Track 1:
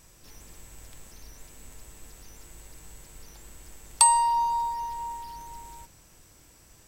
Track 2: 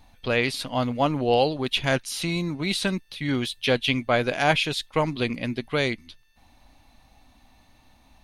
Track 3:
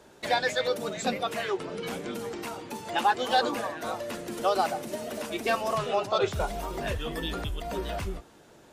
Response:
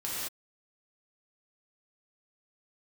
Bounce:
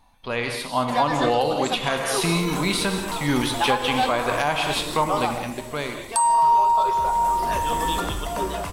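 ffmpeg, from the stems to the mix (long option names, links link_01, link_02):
-filter_complex "[0:a]adelay=2150,volume=1dB[link_01];[1:a]volume=-8dB,asplit=2[link_02][link_03];[link_03]volume=-6.5dB[link_04];[2:a]adelay=650,volume=-9dB,asplit=2[link_05][link_06];[link_06]volume=-9dB[link_07];[3:a]atrim=start_sample=2205[link_08];[link_04][link_07]amix=inputs=2:normalize=0[link_09];[link_09][link_08]afir=irnorm=-1:irlink=0[link_10];[link_01][link_02][link_05][link_10]amix=inputs=4:normalize=0,equalizer=frequency=100:width_type=o:width=0.67:gain=-3,equalizer=frequency=1000:width_type=o:width=0.67:gain=10,equalizer=frequency=10000:width_type=o:width=0.67:gain=6,dynaudnorm=framelen=140:gausssize=13:maxgain=13dB,alimiter=limit=-10.5dB:level=0:latency=1:release=314"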